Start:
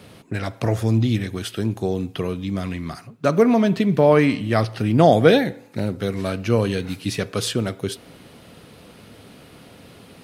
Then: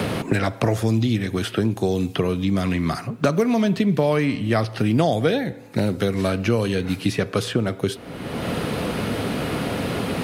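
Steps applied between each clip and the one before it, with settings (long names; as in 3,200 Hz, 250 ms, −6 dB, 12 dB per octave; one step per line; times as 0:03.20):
multiband upward and downward compressor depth 100%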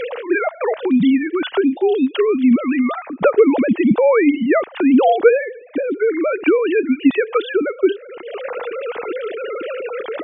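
three sine waves on the formant tracks
level +5 dB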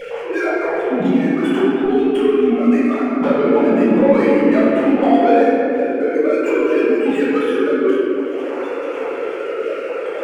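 running median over 9 samples
soft clipping −10 dBFS, distortion −15 dB
rectangular room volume 120 cubic metres, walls hard, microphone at 1.3 metres
level −8 dB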